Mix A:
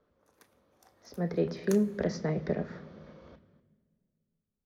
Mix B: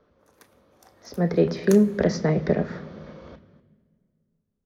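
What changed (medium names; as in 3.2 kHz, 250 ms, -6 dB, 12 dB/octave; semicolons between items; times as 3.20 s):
speech +9.0 dB; background +7.0 dB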